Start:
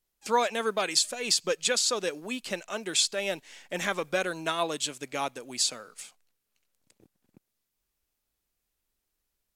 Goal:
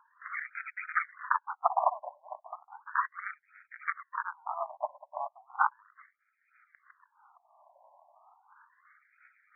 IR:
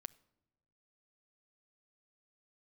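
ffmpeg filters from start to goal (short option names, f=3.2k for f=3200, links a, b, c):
-filter_complex "[0:a]equalizer=f=150:w=0.39:g=-10.5,asplit=2[a][b];[b]adynamicsmooth=sensitivity=5:basefreq=1.6k,volume=-0.5dB[c];[a][c]amix=inputs=2:normalize=0,aeval=exprs='0.501*(cos(1*acos(clip(val(0)/0.501,-1,1)))-cos(1*PI/2))+0.251*(cos(6*acos(clip(val(0)/0.501,-1,1)))-cos(6*PI/2))':c=same,aemphasis=mode=production:type=50kf,acompressor=mode=upward:threshold=-24dB:ratio=2.5,acrusher=samples=24:mix=1:aa=0.000001:lfo=1:lforange=24:lforate=3,afftfilt=real='re*between(b*sr/1024,780*pow(1800/780,0.5+0.5*sin(2*PI*0.35*pts/sr))/1.41,780*pow(1800/780,0.5+0.5*sin(2*PI*0.35*pts/sr))*1.41)':imag='im*between(b*sr/1024,780*pow(1800/780,0.5+0.5*sin(2*PI*0.35*pts/sr))/1.41,780*pow(1800/780,0.5+0.5*sin(2*PI*0.35*pts/sr))*1.41)':win_size=1024:overlap=0.75,volume=-9dB"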